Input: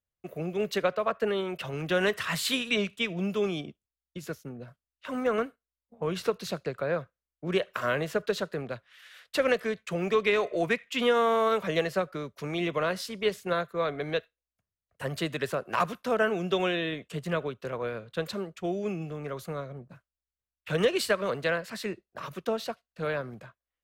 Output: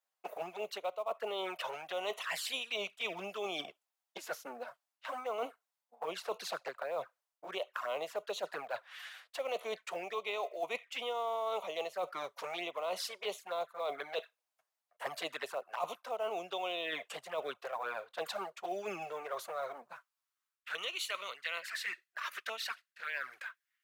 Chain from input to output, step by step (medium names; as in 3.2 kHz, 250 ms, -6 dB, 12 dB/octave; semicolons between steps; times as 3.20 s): touch-sensitive flanger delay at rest 10.2 ms, full sweep at -25.5 dBFS; high-pass sweep 770 Hz -> 1.7 kHz, 19.53–21.25 s; short-mantissa float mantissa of 4-bit; reverse; compression 5:1, threshold -44 dBFS, peak gain reduction 20 dB; reverse; trim +7.5 dB